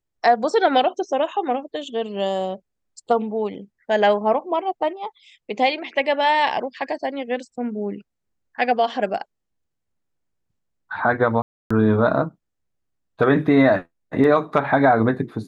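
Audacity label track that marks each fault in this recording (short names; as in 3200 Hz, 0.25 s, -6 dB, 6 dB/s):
11.420000	11.710000	gap 0.285 s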